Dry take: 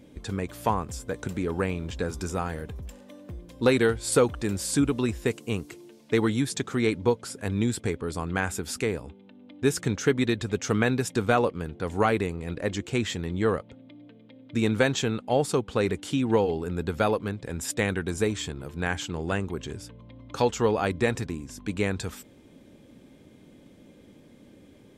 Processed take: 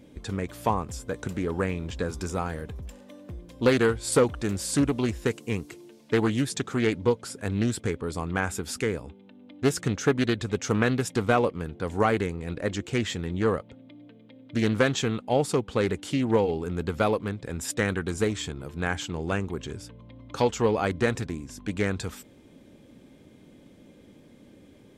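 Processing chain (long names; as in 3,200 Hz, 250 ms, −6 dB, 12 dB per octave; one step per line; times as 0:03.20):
highs frequency-modulated by the lows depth 0.24 ms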